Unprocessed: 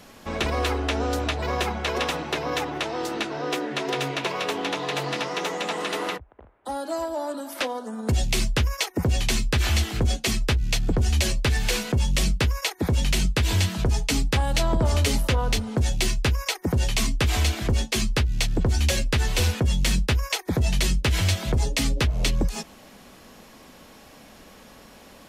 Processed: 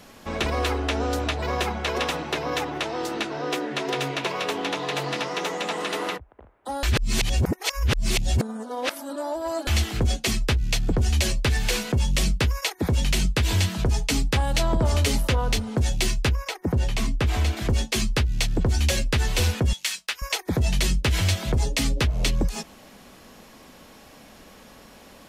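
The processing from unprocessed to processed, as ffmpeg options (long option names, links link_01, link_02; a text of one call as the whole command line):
ffmpeg -i in.wav -filter_complex "[0:a]asettb=1/sr,asplit=3[link_01][link_02][link_03];[link_01]atrim=end=16.294[link_04];[link_02]atrim=start=16.29:end=17.57,asetpts=PTS-STARTPTS,afade=type=in:duration=0.004:curve=qsin,afade=type=out:start_time=1.276:duration=0.004:curve=qsin,highshelf=frequency=2600:gain=-9[link_05];[link_03]atrim=start=17.566[link_06];[link_04][link_05]acrossfade=duration=0.004:curve1=hsin:curve2=qsin[link_07];[link_07][link_06]acrossfade=duration=0.004:curve1=qsin:curve2=hsin,asettb=1/sr,asplit=3[link_08][link_09][link_10];[link_08]atrim=end=19.734[link_11];[link_09]atrim=start=19.73:end=20.22,asetpts=PTS-STARTPTS,afade=type=in:duration=0.004:curve=qsin,afade=type=out:start_time=0.486:duration=0.004:curve=qsin,highpass=1300[link_12];[link_10]atrim=start=20.216[link_13];[link_11][link_12]acrossfade=duration=0.004:curve1=hsin:curve2=qsin[link_14];[link_14][link_13]acrossfade=duration=0.004:curve1=qsin:curve2=hsin,asplit=3[link_15][link_16][link_17];[link_15]atrim=end=6.832[link_18];[link_16]atrim=start=6.828:end=9.672,asetpts=PTS-STARTPTS,areverse[link_19];[link_17]atrim=start=9.668[link_20];[link_18][link_19]acrossfade=duration=0.004:curve1=hsin:curve2=hsin[link_21];[link_21][link_20]acrossfade=duration=0.004:curve1=hsin:curve2=hsin" out.wav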